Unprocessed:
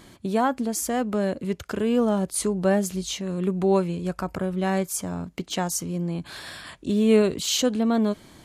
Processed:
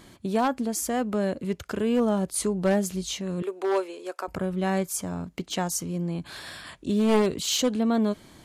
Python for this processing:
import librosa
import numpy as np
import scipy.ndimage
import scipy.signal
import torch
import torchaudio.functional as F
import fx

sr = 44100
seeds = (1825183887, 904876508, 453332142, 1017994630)

y = np.minimum(x, 2.0 * 10.0 ** (-15.5 / 20.0) - x)
y = fx.steep_highpass(y, sr, hz=350.0, slope=36, at=(3.42, 4.28))
y = y * librosa.db_to_amplitude(-1.5)